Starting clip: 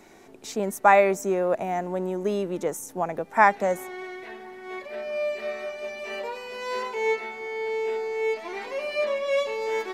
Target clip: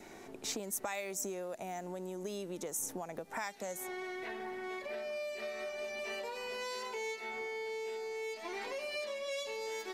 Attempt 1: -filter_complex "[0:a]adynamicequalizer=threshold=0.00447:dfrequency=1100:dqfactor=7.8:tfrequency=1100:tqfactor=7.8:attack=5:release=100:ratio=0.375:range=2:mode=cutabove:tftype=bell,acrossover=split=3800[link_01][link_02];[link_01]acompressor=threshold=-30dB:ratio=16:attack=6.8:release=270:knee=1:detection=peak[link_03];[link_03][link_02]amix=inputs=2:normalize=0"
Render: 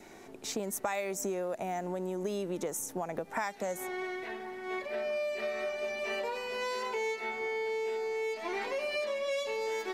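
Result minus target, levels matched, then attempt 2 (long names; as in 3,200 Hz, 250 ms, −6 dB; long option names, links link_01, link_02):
downward compressor: peak gain reduction −6.5 dB
-filter_complex "[0:a]adynamicequalizer=threshold=0.00447:dfrequency=1100:dqfactor=7.8:tfrequency=1100:tqfactor=7.8:attack=5:release=100:ratio=0.375:range=2:mode=cutabove:tftype=bell,acrossover=split=3800[link_01][link_02];[link_01]acompressor=threshold=-37dB:ratio=16:attack=6.8:release=270:knee=1:detection=peak[link_03];[link_03][link_02]amix=inputs=2:normalize=0"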